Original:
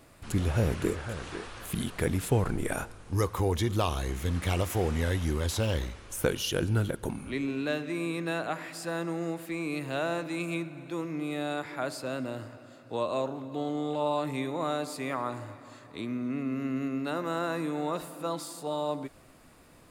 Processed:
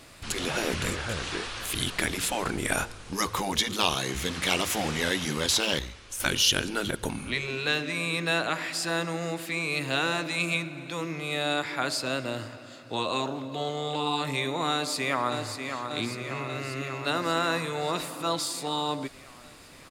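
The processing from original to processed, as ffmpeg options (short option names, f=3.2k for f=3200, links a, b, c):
-filter_complex "[0:a]asplit=2[a][b];[b]afade=t=in:st=14.72:d=0.01,afade=t=out:st=15.86:d=0.01,aecho=0:1:590|1180|1770|2360|2950|3540|4130|4720|5310|5900|6490:0.446684|0.312679|0.218875|0.153212|0.107249|0.0750741|0.0525519|0.0367863|0.0257504|0.0180253|0.0126177[c];[a][c]amix=inputs=2:normalize=0,asplit=3[d][e][f];[d]atrim=end=5.792[g];[e]atrim=start=5.788:end=6.202,asetpts=PTS-STARTPTS,volume=-7dB[h];[f]atrim=start=6.198[i];[g][h]acrossfade=d=0.004:c1=hsin:c2=hsin[j];[j][i]acrossfade=d=0.004:c1=hsin:c2=hsin,afftfilt=real='re*lt(hypot(re,im),0.2)':imag='im*lt(hypot(re,im),0.2)':win_size=1024:overlap=0.75,equalizer=f=4.2k:w=0.48:g=10,volume=3dB"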